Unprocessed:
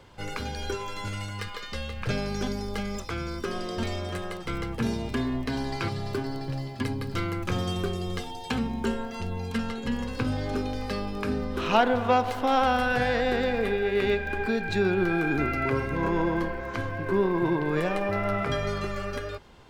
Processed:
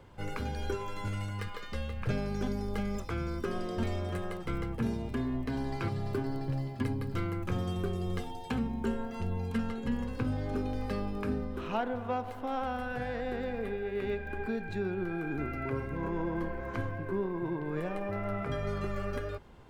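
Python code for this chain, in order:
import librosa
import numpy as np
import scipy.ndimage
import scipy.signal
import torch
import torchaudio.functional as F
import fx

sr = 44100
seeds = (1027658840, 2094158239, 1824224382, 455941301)

y = fx.peak_eq(x, sr, hz=4800.0, db=-7.0, octaves=1.7)
y = fx.rider(y, sr, range_db=4, speed_s=0.5)
y = fx.low_shelf(y, sr, hz=360.0, db=4.0)
y = y * 10.0 ** (-8.0 / 20.0)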